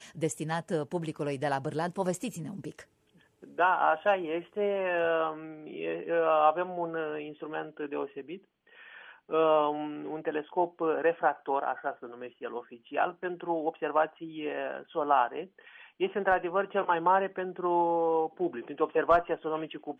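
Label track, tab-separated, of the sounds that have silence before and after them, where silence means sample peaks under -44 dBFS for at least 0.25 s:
3.430000	8.370000	sound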